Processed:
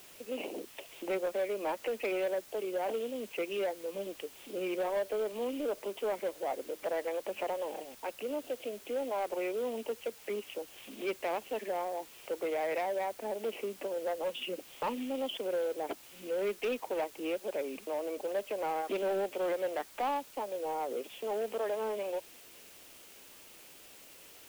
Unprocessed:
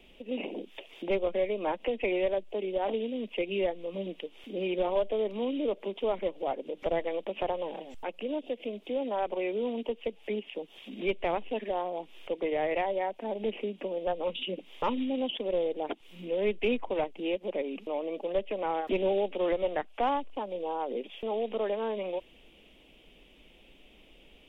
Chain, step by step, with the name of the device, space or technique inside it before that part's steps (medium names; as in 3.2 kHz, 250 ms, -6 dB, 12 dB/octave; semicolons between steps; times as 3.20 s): tape answering machine (band-pass 340–3000 Hz; saturation -27 dBFS, distortion -14 dB; wow and flutter; white noise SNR 19 dB)